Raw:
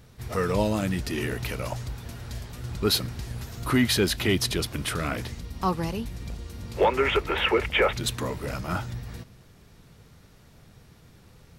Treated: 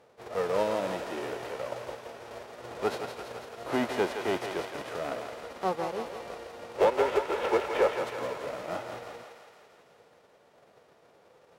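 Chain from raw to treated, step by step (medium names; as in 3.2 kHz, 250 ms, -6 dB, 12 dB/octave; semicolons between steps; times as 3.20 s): formants flattened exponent 0.3; band-pass filter 530 Hz, Q 1.7; thinning echo 167 ms, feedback 68%, high-pass 550 Hz, level -5.5 dB; trim +3.5 dB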